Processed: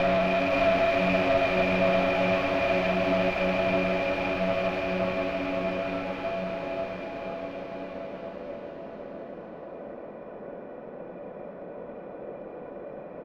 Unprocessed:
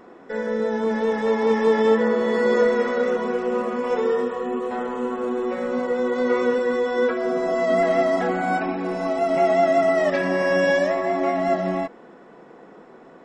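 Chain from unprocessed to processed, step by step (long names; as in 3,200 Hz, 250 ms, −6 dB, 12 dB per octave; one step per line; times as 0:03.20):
loose part that buzzes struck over −28 dBFS, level −12 dBFS
low-shelf EQ 200 Hz +10 dB
hollow resonant body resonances 580/2,400 Hz, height 17 dB, ringing for 55 ms
in parallel at −4 dB: wrap-around overflow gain 19 dB
on the sum: extreme stretch with random phases 15×, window 1.00 s, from 0:11.63
tube saturation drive 18 dB, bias 0.65
high-frequency loss of the air 290 metres
single-tap delay 524 ms −4 dB
level −1.5 dB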